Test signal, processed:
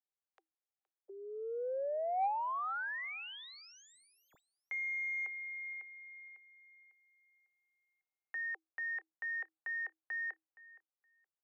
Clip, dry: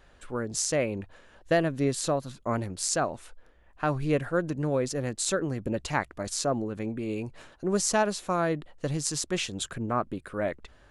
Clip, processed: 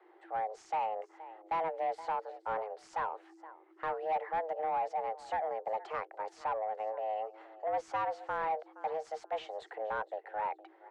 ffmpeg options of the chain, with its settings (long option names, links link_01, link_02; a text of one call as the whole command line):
ffmpeg -i in.wav -filter_complex "[0:a]equalizer=frequency=460:width=6.9:gain=9.5,acrossover=split=130[link_01][link_02];[link_01]acompressor=threshold=-56dB:ratio=4[link_03];[link_03][link_02]amix=inputs=2:normalize=0,afreqshift=320,aecho=1:1:469|938:0.0891|0.0152,asoftclip=type=tanh:threshold=-24dB,lowpass=1600,volume=-3.5dB" out.wav